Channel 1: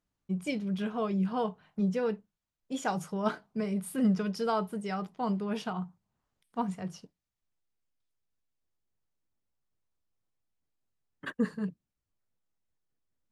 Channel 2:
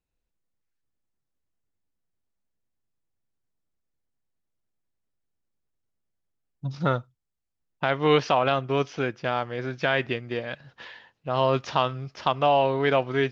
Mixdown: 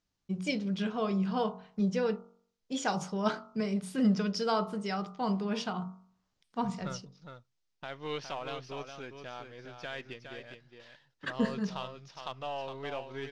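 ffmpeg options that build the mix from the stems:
-filter_complex "[0:a]lowpass=5.7k,bandreject=f=46.56:t=h:w=4,bandreject=f=93.12:t=h:w=4,bandreject=f=139.68:t=h:w=4,bandreject=f=186.24:t=h:w=4,bandreject=f=232.8:t=h:w=4,bandreject=f=279.36:t=h:w=4,bandreject=f=325.92:t=h:w=4,bandreject=f=372.48:t=h:w=4,bandreject=f=419.04:t=h:w=4,bandreject=f=465.6:t=h:w=4,bandreject=f=512.16:t=h:w=4,bandreject=f=558.72:t=h:w=4,bandreject=f=605.28:t=h:w=4,bandreject=f=651.84:t=h:w=4,bandreject=f=698.4:t=h:w=4,bandreject=f=744.96:t=h:w=4,bandreject=f=791.52:t=h:w=4,bandreject=f=838.08:t=h:w=4,bandreject=f=884.64:t=h:w=4,bandreject=f=931.2:t=h:w=4,bandreject=f=977.76:t=h:w=4,bandreject=f=1.02432k:t=h:w=4,bandreject=f=1.07088k:t=h:w=4,bandreject=f=1.11744k:t=h:w=4,bandreject=f=1.164k:t=h:w=4,bandreject=f=1.21056k:t=h:w=4,bandreject=f=1.25712k:t=h:w=4,bandreject=f=1.30368k:t=h:w=4,bandreject=f=1.35024k:t=h:w=4,bandreject=f=1.3968k:t=h:w=4,bandreject=f=1.44336k:t=h:w=4,volume=0.5dB[a];[1:a]aeval=exprs='if(lt(val(0),0),0.708*val(0),val(0))':c=same,agate=range=-12dB:threshold=-52dB:ratio=16:detection=peak,volume=-16dB,asplit=2[b][c];[c]volume=-7.5dB,aecho=0:1:412:1[d];[a][b][d]amix=inputs=3:normalize=0,equalizer=f=5.6k:w=0.87:g=9.5"

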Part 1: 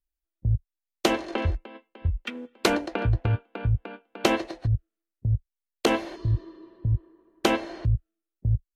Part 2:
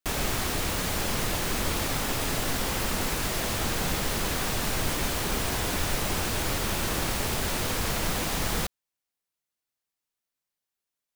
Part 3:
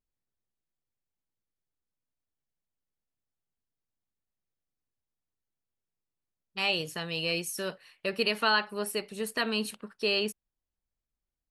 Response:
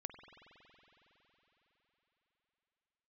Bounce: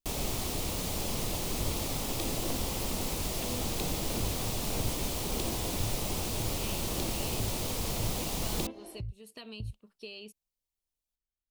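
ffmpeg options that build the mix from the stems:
-filter_complex "[0:a]lowshelf=f=220:g=-7,acrossover=split=360[a][b];[b]acompressor=threshold=-32dB:ratio=6[c];[a][c]amix=inputs=2:normalize=0,tremolo=f=1.6:d=0.64,adelay=1150,volume=1dB[d];[1:a]volume=-4dB[e];[2:a]equalizer=f=2.9k:w=1.3:g=5.5,acompressor=threshold=-26dB:ratio=6,volume=-12.5dB[f];[d][f]amix=inputs=2:normalize=0,lowshelf=f=110:g=8,acompressor=threshold=-36dB:ratio=6,volume=0dB[g];[e][g]amix=inputs=2:normalize=0,equalizer=f=1.6k:w=1.6:g=-13"

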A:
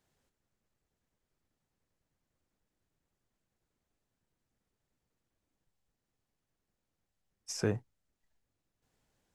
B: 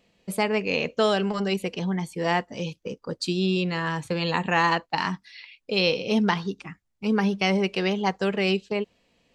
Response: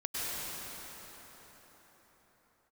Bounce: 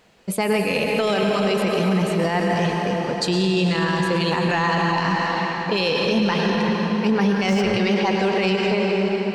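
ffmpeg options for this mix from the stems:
-filter_complex "[0:a]asplit=2[a][b];[b]highpass=f=720:p=1,volume=32dB,asoftclip=type=tanh:threshold=-17dB[c];[a][c]amix=inputs=2:normalize=0,lowpass=f=1.7k:p=1,volume=-6dB,volume=0.5dB[d];[1:a]acontrast=81,volume=-3.5dB,asplit=2[e][f];[f]volume=-5dB[g];[2:a]atrim=start_sample=2205[h];[g][h]afir=irnorm=-1:irlink=0[i];[d][e][i]amix=inputs=3:normalize=0,alimiter=limit=-12dB:level=0:latency=1:release=23"

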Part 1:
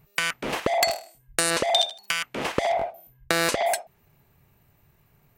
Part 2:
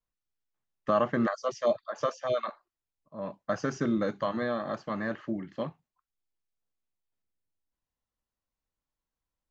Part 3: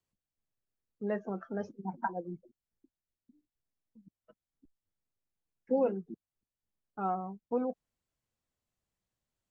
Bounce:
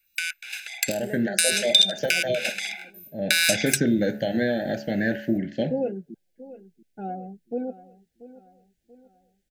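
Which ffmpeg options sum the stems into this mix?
-filter_complex "[0:a]highpass=f=1.2k:w=0.5412,highpass=f=1.2k:w=1.3066,aecho=1:1:0.8:0.85,volume=-4dB[a];[1:a]bandreject=f=71.1:t=h:w=4,bandreject=f=142.2:t=h:w=4,bandreject=f=213.3:t=h:w=4,bandreject=f=284.4:t=h:w=4,bandreject=f=355.5:t=h:w=4,bandreject=f=426.6:t=h:w=4,bandreject=f=497.7:t=h:w=4,bandreject=f=568.8:t=h:w=4,bandreject=f=639.9:t=h:w=4,bandreject=f=711:t=h:w=4,bandreject=f=782.1:t=h:w=4,bandreject=f=853.2:t=h:w=4,bandreject=f=924.3:t=h:w=4,bandreject=f=995.4:t=h:w=4,bandreject=f=1.0665k:t=h:w=4,bandreject=f=1.1376k:t=h:w=4,bandreject=f=1.2087k:t=h:w=4,bandreject=f=1.2798k:t=h:w=4,bandreject=f=1.3509k:t=h:w=4,bandreject=f=1.422k:t=h:w=4,bandreject=f=1.4931k:t=h:w=4,bandreject=f=1.5642k:t=h:w=4,bandreject=f=1.6353k:t=h:w=4,bandreject=f=1.7064k:t=h:w=4,bandreject=f=1.7775k:t=h:w=4,bandreject=f=1.8486k:t=h:w=4,bandreject=f=1.9197k:t=h:w=4,bandreject=f=1.9908k:t=h:w=4,bandreject=f=2.0619k:t=h:w=4,acompressor=threshold=-28dB:ratio=3,volume=2.5dB[b];[2:a]volume=-5dB,asplit=2[c][d];[d]volume=-16.5dB,aecho=0:1:685|1370|2055|2740|3425|4110:1|0.43|0.185|0.0795|0.0342|0.0147[e];[a][b][c][e]amix=inputs=4:normalize=0,asuperstop=centerf=1100:order=12:qfactor=1.7,dynaudnorm=f=270:g=7:m=8.5dB,equalizer=f=740:w=1.4:g=-4"

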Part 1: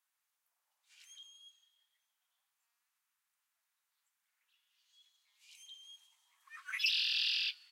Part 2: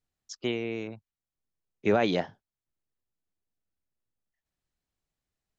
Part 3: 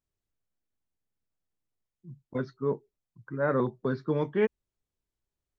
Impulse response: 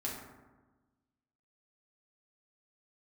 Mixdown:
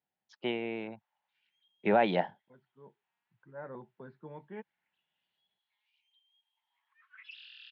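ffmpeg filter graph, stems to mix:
-filter_complex "[0:a]adynamicequalizer=threshold=0.00112:dfrequency=1300:dqfactor=2.2:tfrequency=1300:tqfactor=2.2:attack=5:release=100:ratio=0.375:range=3.5:mode=boostabove:tftype=bell,acompressor=mode=upward:threshold=-54dB:ratio=2.5,adelay=450,volume=-13.5dB[a];[1:a]lowshelf=f=110:g=-9.5,volume=1dB,asplit=2[b][c];[2:a]adelay=150,volume=-15.5dB[d];[c]apad=whole_len=252792[e];[d][e]sidechaincompress=threshold=-36dB:ratio=4:attack=9.7:release=1000[f];[a][b][f]amix=inputs=3:normalize=0,highpass=160,equalizer=f=190:t=q:w=4:g=3,equalizer=f=280:t=q:w=4:g=-8,equalizer=f=430:t=q:w=4:g=-5,equalizer=f=860:t=q:w=4:g=7,equalizer=f=1.2k:t=q:w=4:g=-8,equalizer=f=2.4k:t=q:w=4:g=-3,lowpass=f=3k:w=0.5412,lowpass=f=3k:w=1.3066"

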